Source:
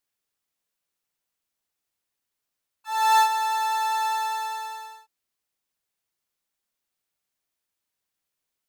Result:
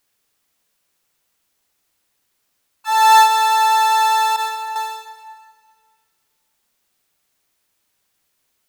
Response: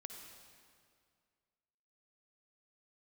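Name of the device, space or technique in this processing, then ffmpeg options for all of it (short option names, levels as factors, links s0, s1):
ducked reverb: -filter_complex "[0:a]asettb=1/sr,asplit=3[s0][s1][s2];[s0]atrim=end=4.364[s3];[s1]atrim=start=4.36:end=4.76,asetpts=PTS-STARTPTS,afade=t=in:d=0.004:c=qsin,afade=t=out:st=0.396:d=0.004:c=qsin,agate=range=0.224:threshold=0.0355:ratio=16:detection=peak[s4];[s2]atrim=start=4.756[s5];[s3][s4]acrossfade=d=0.004:c1=hsin:c2=qsin[s6];[s6][s5]acrossfade=d=0.004:c1=qsin:c2=hsin,asplit=3[s7][s8][s9];[1:a]atrim=start_sample=2205[s10];[s8][s10]afir=irnorm=-1:irlink=0[s11];[s9]apad=whole_len=383069[s12];[s11][s12]sidechaincompress=threshold=0.0282:ratio=8:attack=16:release=143,volume=2.24[s13];[s7][s13]amix=inputs=2:normalize=0,volume=2.24"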